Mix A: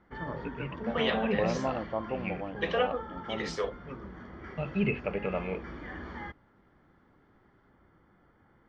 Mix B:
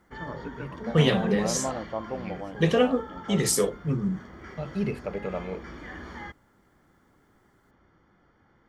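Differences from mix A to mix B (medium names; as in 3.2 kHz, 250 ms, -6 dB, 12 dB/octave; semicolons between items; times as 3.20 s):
first voice: remove resonant low-pass 2.7 kHz, resonance Q 5; second voice: remove three-band isolator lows -24 dB, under 510 Hz, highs -21 dB, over 6.2 kHz; master: remove distance through air 200 m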